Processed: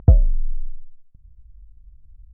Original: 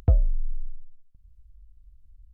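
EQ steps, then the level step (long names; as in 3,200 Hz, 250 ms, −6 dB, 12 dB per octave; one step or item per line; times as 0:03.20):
low-pass filter 1,100 Hz 12 dB per octave
parametric band 160 Hz +5.5 dB 1.9 octaves
+5.0 dB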